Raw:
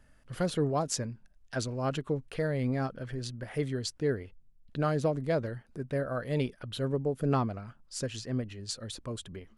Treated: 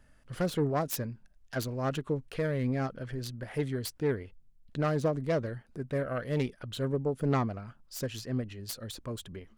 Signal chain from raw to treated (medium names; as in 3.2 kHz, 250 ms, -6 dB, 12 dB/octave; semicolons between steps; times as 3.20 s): self-modulated delay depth 0.13 ms